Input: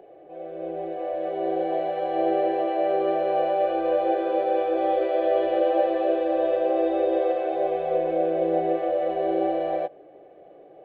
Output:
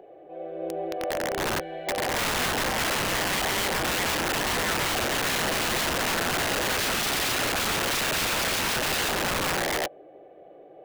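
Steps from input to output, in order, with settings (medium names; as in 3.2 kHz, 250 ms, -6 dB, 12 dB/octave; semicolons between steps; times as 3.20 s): 1.60–1.88 s: time-frequency box 210–1400 Hz -11 dB; 6.78–9.17 s: resonant low shelf 300 Hz -12 dB, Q 3; integer overflow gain 21.5 dB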